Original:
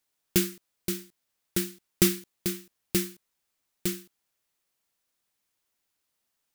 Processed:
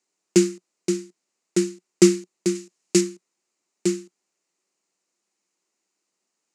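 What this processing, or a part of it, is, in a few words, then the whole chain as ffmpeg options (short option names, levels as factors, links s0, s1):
television speaker: -filter_complex "[0:a]asettb=1/sr,asplit=3[s0][s1][s2];[s0]atrim=end=2.554[s3];[s1]atrim=start=2.55:end=3.01,asetpts=PTS-STARTPTS,afade=t=in:d=0.004:c=qsin,afade=t=out:st=0.456:d=0.004:c=qsin,equalizer=f=7200:t=o:w=2.8:g=5.5[s4];[s2]atrim=start=3.006[s5];[s3][s4]acrossfade=d=0.004:c1=hsin:c2=qsin[s6];[s6][s5]acrossfade=d=0.004:c1=qsin:c2=hsin,highpass=f=180:w=0.5412,highpass=f=180:w=1.3066,equalizer=f=180:t=q:w=4:g=5,equalizer=f=360:t=q:w=4:g=9,equalizer=f=1600:t=q:w=4:g=-5,equalizer=f=3400:t=q:w=4:g=-9,equalizer=f=7000:t=q:w=4:g=6,lowpass=f=8100:w=0.5412,lowpass=f=8100:w=1.3066,volume=1.5"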